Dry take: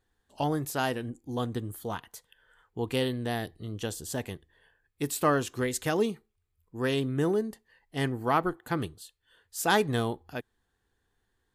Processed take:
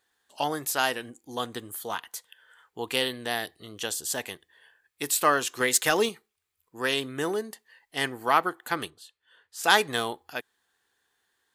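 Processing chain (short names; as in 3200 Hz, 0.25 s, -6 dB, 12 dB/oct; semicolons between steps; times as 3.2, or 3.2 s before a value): HPF 1300 Hz 6 dB/oct; 5.6–6.09 sample leveller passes 1; 8.9–9.64 LPF 2000 Hz 6 dB/oct; gain +8.5 dB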